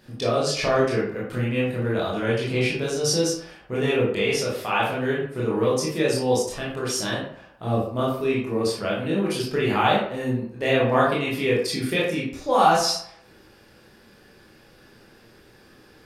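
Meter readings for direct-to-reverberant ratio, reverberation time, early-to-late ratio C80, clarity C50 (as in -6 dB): -6.0 dB, 0.65 s, 7.0 dB, 2.5 dB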